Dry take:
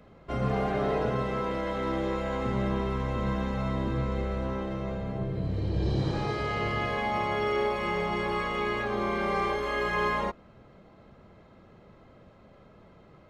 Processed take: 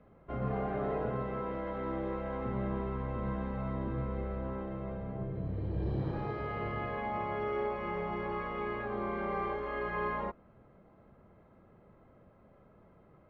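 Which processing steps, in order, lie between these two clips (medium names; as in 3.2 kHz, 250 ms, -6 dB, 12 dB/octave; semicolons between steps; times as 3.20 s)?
low-pass 1.8 kHz 12 dB/octave; trim -6 dB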